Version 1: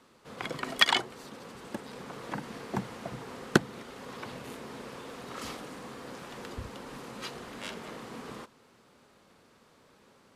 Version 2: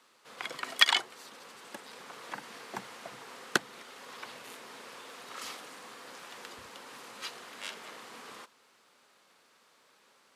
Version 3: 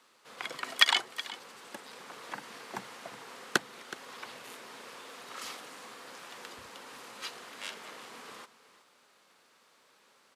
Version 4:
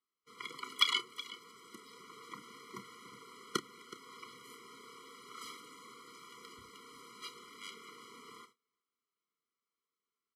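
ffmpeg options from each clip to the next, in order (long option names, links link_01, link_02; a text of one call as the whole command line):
ffmpeg -i in.wav -af "highpass=frequency=1300:poles=1,volume=1.5dB" out.wav
ffmpeg -i in.wav -af "aecho=1:1:371:0.158" out.wav
ffmpeg -i in.wav -filter_complex "[0:a]agate=range=-24dB:threshold=-54dB:ratio=16:detection=peak,asplit=2[link_01][link_02];[link_02]adelay=30,volume=-12dB[link_03];[link_01][link_03]amix=inputs=2:normalize=0,afftfilt=real='re*eq(mod(floor(b*sr/1024/480),2),0)':imag='im*eq(mod(floor(b*sr/1024/480),2),0)':win_size=1024:overlap=0.75,volume=-4dB" out.wav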